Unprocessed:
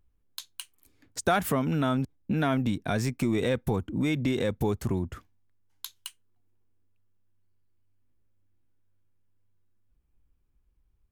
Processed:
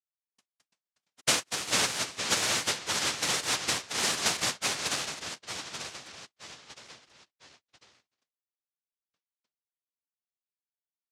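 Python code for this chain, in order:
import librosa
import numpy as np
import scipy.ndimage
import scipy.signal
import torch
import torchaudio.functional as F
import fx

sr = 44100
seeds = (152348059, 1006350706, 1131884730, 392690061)

y = fx.noise_vocoder(x, sr, seeds[0], bands=1)
y = fx.echo_pitch(y, sr, ms=290, semitones=-2, count=3, db_per_echo=-3.0)
y = fx.upward_expand(y, sr, threshold_db=-44.0, expansion=2.5)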